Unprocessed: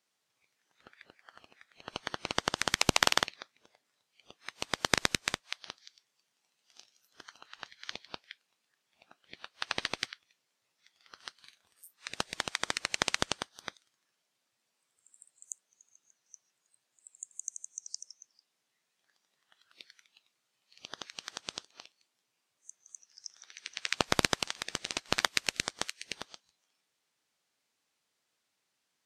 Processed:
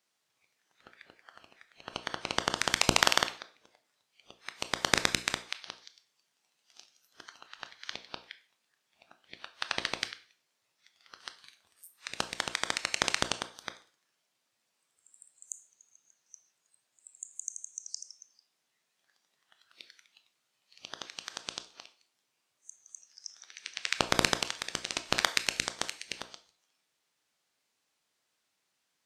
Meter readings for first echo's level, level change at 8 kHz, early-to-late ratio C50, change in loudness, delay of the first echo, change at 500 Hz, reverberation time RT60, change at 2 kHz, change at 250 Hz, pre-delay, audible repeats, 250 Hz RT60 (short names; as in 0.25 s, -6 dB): none, +1.5 dB, 15.0 dB, +1.5 dB, none, +1.0 dB, 0.40 s, +1.5 dB, +0.5 dB, 20 ms, none, 0.45 s